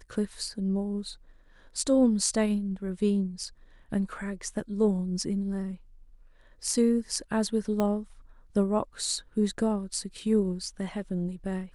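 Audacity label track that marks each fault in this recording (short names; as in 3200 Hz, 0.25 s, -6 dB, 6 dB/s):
7.800000	7.800000	pop -15 dBFS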